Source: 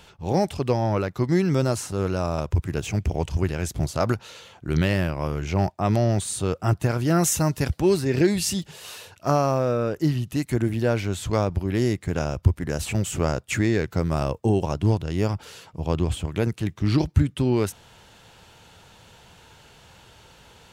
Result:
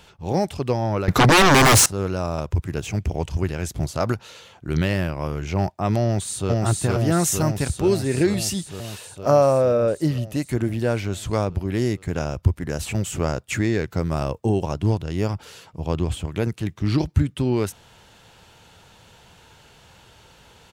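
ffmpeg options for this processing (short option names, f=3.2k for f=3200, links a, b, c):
-filter_complex "[0:a]asettb=1/sr,asplit=3[a][b][c];[a]atrim=end=1.084[d];[b]atrim=start=1.08:end=1.86,asetpts=PTS-STARTPTS,afade=t=in:d=0.004:c=qsin,afade=t=out:st=0.776:d=0.004:c=qsin,aeval=exprs='0.316*sin(PI/2*7.94*val(0)/0.316)':c=same[e];[c]atrim=start=1.856[f];[d][e]acrossfade=d=0.004:c1=hsin:c2=qsin[g];[g][f]acrossfade=d=0.004:c1=qsin:c2=hsin,asplit=2[h][i];[i]afade=t=in:st=6.03:d=0.01,afade=t=out:st=6.5:d=0.01,aecho=0:1:460|920|1380|1840|2300|2760|3220|3680|4140|4600|5060|5520:0.944061|0.708046|0.531034|0.398276|0.298707|0.22403|0.168023|0.126017|0.0945127|0.0708845|0.0531634|0.0398725[j];[h][j]amix=inputs=2:normalize=0,asettb=1/sr,asplit=3[k][l][m];[k]atrim=end=9.134[n];[l]atrim=start=9.13:end=10.49,asetpts=PTS-STARTPTS,afade=t=in:d=0.004:c=qsin,afade=t=out:st=1.356:d=0.004:c=qsin,equalizer=f=560:t=o:w=0.37:g=10[o];[m]atrim=start=10.486[p];[n][o]acrossfade=d=0.004:c1=hsin:c2=qsin[q];[q][p]acrossfade=d=0.004:c1=qsin:c2=hsin"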